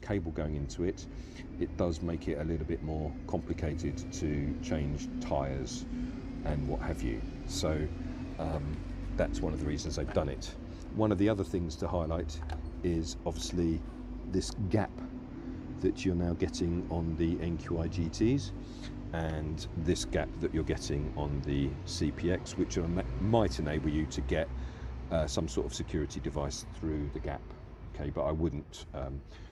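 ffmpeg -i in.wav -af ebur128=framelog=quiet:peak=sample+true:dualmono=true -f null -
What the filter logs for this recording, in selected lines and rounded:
Integrated loudness:
  I:         -31.6 LUFS
  Threshold: -41.7 LUFS
Loudness range:
  LRA:         3.4 LU
  Threshold: -51.5 LUFS
  LRA low:   -33.2 LUFS
  LRA high:  -29.8 LUFS
Sample peak:
  Peak:      -11.9 dBFS
True peak:
  Peak:      -11.9 dBFS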